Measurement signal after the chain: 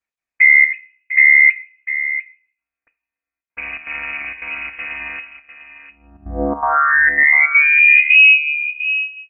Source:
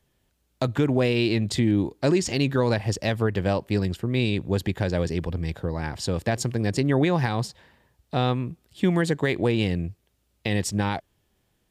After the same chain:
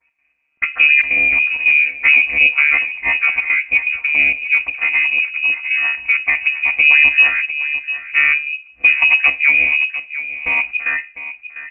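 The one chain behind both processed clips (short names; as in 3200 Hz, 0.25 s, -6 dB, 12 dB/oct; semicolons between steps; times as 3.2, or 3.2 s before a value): chord vocoder bare fifth, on D3; low shelf 160 Hz -7 dB; step gate "x.xxxxx.xx" 163 bpm -12 dB; outdoor echo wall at 120 m, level -12 dB; shoebox room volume 290 m³, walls furnished, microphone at 0.43 m; inverted band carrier 2700 Hz; maximiser +14.5 dB; gain -1 dB; Opus 24 kbps 48000 Hz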